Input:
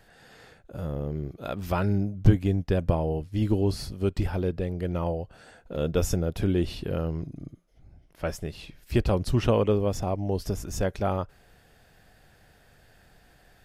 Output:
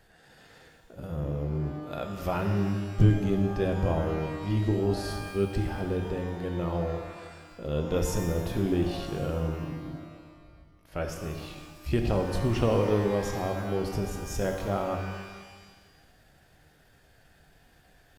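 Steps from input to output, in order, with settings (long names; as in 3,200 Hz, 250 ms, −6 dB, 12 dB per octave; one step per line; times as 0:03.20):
tempo change 0.75×
reverb with rising layers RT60 1.4 s, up +12 semitones, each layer −8 dB, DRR 4 dB
level −3.5 dB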